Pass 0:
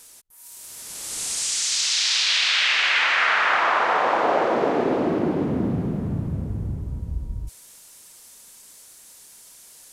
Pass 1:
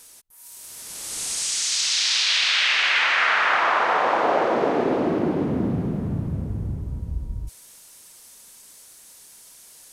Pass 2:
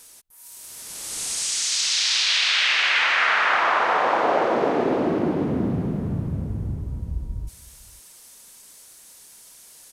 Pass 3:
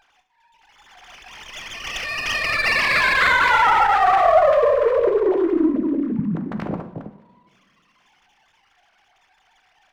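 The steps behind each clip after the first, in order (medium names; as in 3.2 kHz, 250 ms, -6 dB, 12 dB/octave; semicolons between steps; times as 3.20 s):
band-stop 7.3 kHz, Q 26
echo from a far wall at 87 m, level -22 dB
formants replaced by sine waves; two-slope reverb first 0.64 s, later 2.6 s, from -21 dB, DRR 5.5 dB; sliding maximum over 5 samples; trim +2.5 dB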